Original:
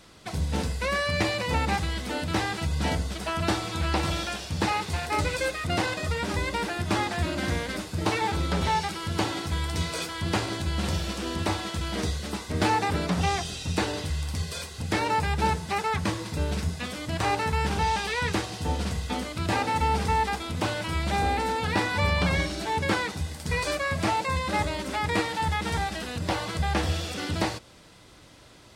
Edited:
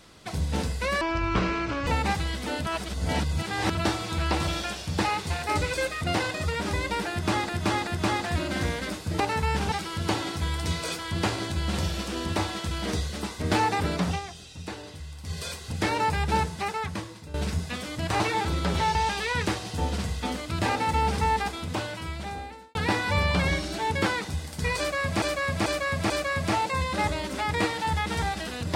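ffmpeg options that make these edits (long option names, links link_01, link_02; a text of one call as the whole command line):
ffmpeg -i in.wav -filter_complex "[0:a]asplit=18[link_01][link_02][link_03][link_04][link_05][link_06][link_07][link_08][link_09][link_10][link_11][link_12][link_13][link_14][link_15][link_16][link_17][link_18];[link_01]atrim=end=1.014[link_19];[link_02]atrim=start=1.01:end=1.5,asetpts=PTS-STARTPTS,asetrate=25137,aresample=44100[link_20];[link_03]atrim=start=1.496:end=2.292[link_21];[link_04]atrim=start=2.288:end=3.382,asetpts=PTS-STARTPTS,areverse[link_22];[link_05]atrim=start=3.378:end=7.122[link_23];[link_06]atrim=start=6.738:end=7.122[link_24];[link_07]atrim=start=6.738:end=8.072[link_25];[link_08]atrim=start=17.298:end=17.822[link_26];[link_09]atrim=start=8.818:end=13.31,asetpts=PTS-STARTPTS,afade=type=out:start_time=4.342:duration=0.15:silence=0.298538[link_27];[link_10]atrim=start=13.31:end=14.33,asetpts=PTS-STARTPTS,volume=-10.5dB[link_28];[link_11]atrim=start=14.33:end=16.44,asetpts=PTS-STARTPTS,afade=type=in:duration=0.15:silence=0.298538,afade=type=out:start_time=1.18:duration=0.93:silence=0.16788[link_29];[link_12]atrim=start=16.44:end=17.302,asetpts=PTS-STARTPTS,afade=type=in:duration=0.004:curve=hsin:silence=0.16788[link_30];[link_13]atrim=start=8.068:end=8.822[link_31];[link_14]atrim=start=17.818:end=21.62,asetpts=PTS-STARTPTS,afade=type=out:start_time=2.472:duration=1.33[link_32];[link_15]atrim=start=21.62:end=24.092,asetpts=PTS-STARTPTS,afade=type=in:duration=0.004:curve=hsin[link_33];[link_16]atrim=start=23.648:end=24.092[link_34];[link_17]atrim=start=23.648:end=24.092[link_35];[link_18]atrim=start=23.648[link_36];[link_19][link_20]acrossfade=duration=0.004:curve1=hsin:curve2=hsin[link_37];[link_37][link_21]acrossfade=duration=0.004:curve1=hsin:curve2=hsin[link_38];[link_38][link_22]acrossfade=duration=0.004:curve1=hsin:curve2=hsin[link_39];[link_39][link_23]acrossfade=duration=0.004:curve1=hsin:curve2=hsin[link_40];[link_40][link_24]acrossfade=duration=0.004:curve1=hsin:curve2=hsin[link_41];[link_41][link_25]acrossfade=duration=0.004:curve1=hsin:curve2=hsin[link_42];[link_42][link_26]acrossfade=duration=0.004:curve1=hsin:curve2=hsin[link_43];[link_27][link_28][link_29][link_30]concat=n=4:v=0:a=1[link_44];[link_43][link_44]acrossfade=duration=0.004:curve1=hsin:curve2=hsin[link_45];[link_45][link_31]acrossfade=duration=0.004:curve1=hsin:curve2=hsin[link_46];[link_32][link_33]concat=n=2:v=0:a=1[link_47];[link_46][link_47]acrossfade=duration=0.004:curve1=hsin:curve2=hsin[link_48];[link_48][link_34]acrossfade=duration=0.004:curve1=hsin:curve2=hsin[link_49];[link_49][link_35]acrossfade=duration=0.004:curve1=hsin:curve2=hsin[link_50];[link_50][link_36]acrossfade=duration=0.004:curve1=hsin:curve2=hsin" out.wav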